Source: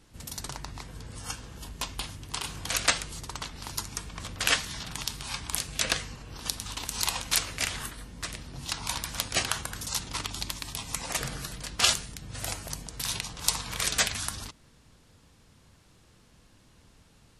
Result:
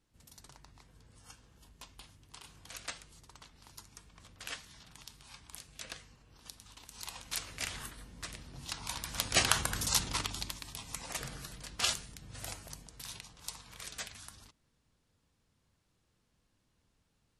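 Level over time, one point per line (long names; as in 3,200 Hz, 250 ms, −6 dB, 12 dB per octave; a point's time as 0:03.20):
0:06.89 −18 dB
0:07.70 −7.5 dB
0:08.97 −7.5 dB
0:09.48 +2 dB
0:09.99 +2 dB
0:10.63 −8.5 dB
0:12.44 −8.5 dB
0:13.51 −17 dB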